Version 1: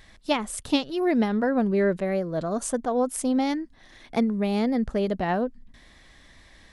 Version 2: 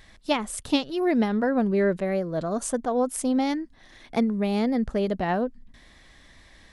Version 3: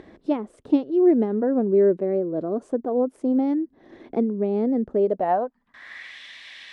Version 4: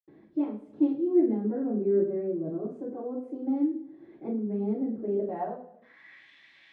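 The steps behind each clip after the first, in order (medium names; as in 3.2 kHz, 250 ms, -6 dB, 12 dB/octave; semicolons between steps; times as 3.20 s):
no audible change
upward compressor, threshold -29 dBFS; band-pass sweep 360 Hz -> 2.8 kHz, 4.94–6.20 s; trim +8 dB
reverberation, pre-delay 77 ms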